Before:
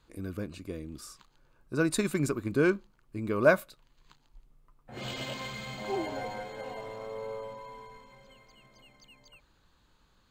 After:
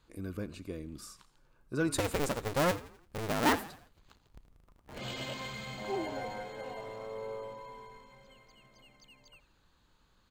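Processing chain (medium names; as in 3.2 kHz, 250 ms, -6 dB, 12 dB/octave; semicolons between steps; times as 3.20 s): 1.98–4.99 s: cycle switcher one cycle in 2, inverted; frequency-shifting echo 85 ms, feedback 45%, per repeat -49 Hz, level -19 dB; saturation -18 dBFS, distortion -14 dB; trim -2 dB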